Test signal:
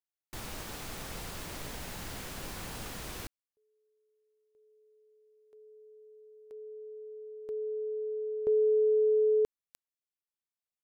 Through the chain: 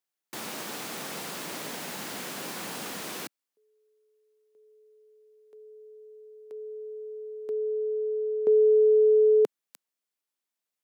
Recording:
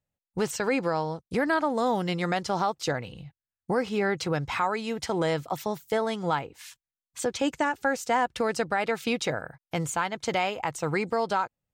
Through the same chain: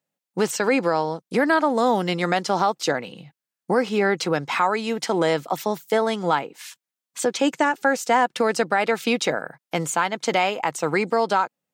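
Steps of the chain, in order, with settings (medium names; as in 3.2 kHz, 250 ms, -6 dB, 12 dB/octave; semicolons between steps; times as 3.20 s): high-pass 180 Hz 24 dB/octave; trim +6 dB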